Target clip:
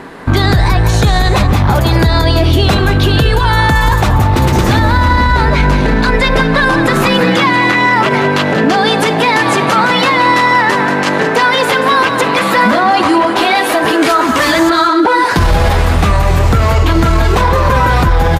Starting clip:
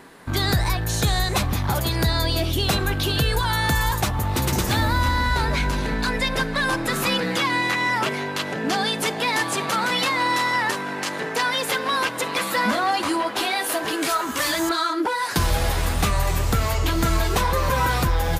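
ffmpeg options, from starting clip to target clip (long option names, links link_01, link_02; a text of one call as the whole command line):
ffmpeg -i in.wav -af "lowpass=frequency=2100:poles=1,aecho=1:1:184:0.299,alimiter=level_in=17.5dB:limit=-1dB:release=50:level=0:latency=1,volume=-1dB" out.wav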